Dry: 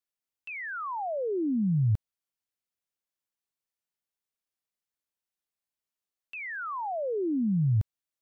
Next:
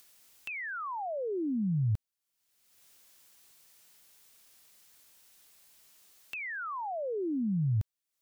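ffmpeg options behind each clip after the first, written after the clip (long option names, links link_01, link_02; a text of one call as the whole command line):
ffmpeg -i in.wav -af "highshelf=frequency=2400:gain=7,acompressor=mode=upward:threshold=-34dB:ratio=2.5,volume=-4dB" out.wav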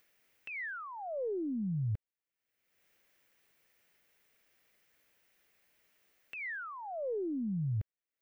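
ffmpeg -i in.wav -af "equalizer=frequency=500:width_type=o:width=1:gain=5,equalizer=frequency=1000:width_type=o:width=1:gain=-5,equalizer=frequency=2000:width_type=o:width=1:gain=7,equalizer=frequency=4000:width_type=o:width=1:gain=-7,equalizer=frequency=8000:width_type=o:width=1:gain=-9,equalizer=frequency=16000:width_type=o:width=1:gain=-9,aeval=exprs='0.0708*(cos(1*acos(clip(val(0)/0.0708,-1,1)))-cos(1*PI/2))+0.000501*(cos(4*acos(clip(val(0)/0.0708,-1,1)))-cos(4*PI/2))':channel_layout=same,volume=-5dB" out.wav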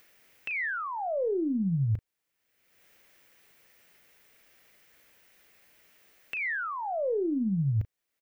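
ffmpeg -i in.wav -filter_complex "[0:a]asplit=2[link_01][link_02];[link_02]acompressor=threshold=-42dB:ratio=6,volume=1dB[link_03];[link_01][link_03]amix=inputs=2:normalize=0,asplit=2[link_04][link_05];[link_05]adelay=36,volume=-13dB[link_06];[link_04][link_06]amix=inputs=2:normalize=0,volume=3.5dB" out.wav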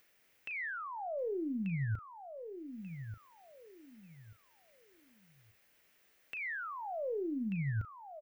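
ffmpeg -i in.wav -af "aecho=1:1:1187|2374|3561:0.335|0.0904|0.0244,volume=-8dB" out.wav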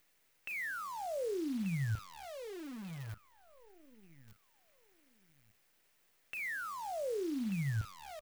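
ffmpeg -i in.wav -af "acrusher=bits=9:dc=4:mix=0:aa=0.000001" out.wav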